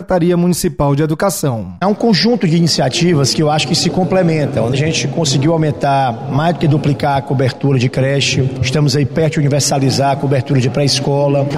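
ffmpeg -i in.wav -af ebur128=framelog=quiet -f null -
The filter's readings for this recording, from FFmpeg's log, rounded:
Integrated loudness:
  I:         -13.7 LUFS
  Threshold: -23.7 LUFS
Loudness range:
  LRA:         1.4 LU
  Threshold: -33.7 LUFS
  LRA low:   -14.3 LUFS
  LRA high:  -12.9 LUFS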